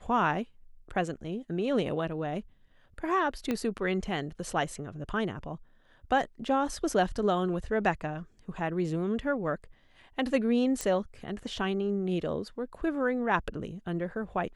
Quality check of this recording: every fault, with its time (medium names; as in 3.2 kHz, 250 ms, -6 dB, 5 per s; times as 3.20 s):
3.51 s: pop -17 dBFS
10.81 s: pop -17 dBFS